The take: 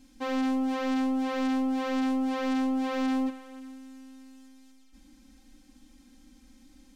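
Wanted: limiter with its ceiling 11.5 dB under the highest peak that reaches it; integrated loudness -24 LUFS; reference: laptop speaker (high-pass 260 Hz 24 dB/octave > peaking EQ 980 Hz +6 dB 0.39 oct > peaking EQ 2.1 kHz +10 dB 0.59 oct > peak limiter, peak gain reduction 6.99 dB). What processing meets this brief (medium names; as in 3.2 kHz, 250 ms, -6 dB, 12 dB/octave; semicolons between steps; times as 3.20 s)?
peak limiter -37 dBFS; high-pass 260 Hz 24 dB/octave; peaking EQ 980 Hz +6 dB 0.39 oct; peaking EQ 2.1 kHz +10 dB 0.59 oct; trim +20 dB; peak limiter -15.5 dBFS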